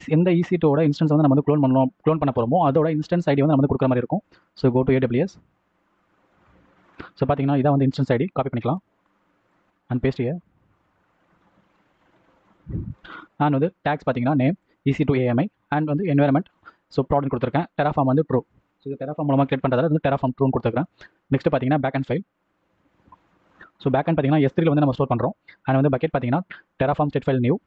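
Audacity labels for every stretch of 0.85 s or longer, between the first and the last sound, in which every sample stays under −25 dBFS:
5.260000	7.000000	silence
8.770000	9.910000	silence
10.350000	12.700000	silence
22.200000	23.860000	silence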